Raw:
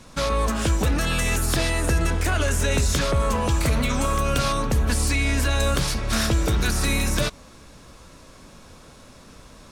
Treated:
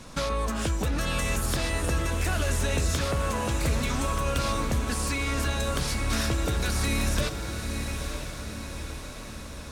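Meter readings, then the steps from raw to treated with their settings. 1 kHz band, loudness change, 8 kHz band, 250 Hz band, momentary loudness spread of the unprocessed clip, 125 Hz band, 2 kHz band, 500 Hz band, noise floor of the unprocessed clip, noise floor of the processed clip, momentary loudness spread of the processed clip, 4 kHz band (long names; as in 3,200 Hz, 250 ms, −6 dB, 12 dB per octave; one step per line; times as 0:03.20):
−4.5 dB, −5.5 dB, −4.5 dB, −4.5 dB, 2 LU, −4.5 dB, −4.5 dB, −4.5 dB, −48 dBFS, −39 dBFS, 10 LU, −4.5 dB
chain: downward compressor 2 to 1, threshold −32 dBFS, peak gain reduction 8.5 dB
feedback delay with all-pass diffusion 937 ms, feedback 55%, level −6.5 dB
level +1.5 dB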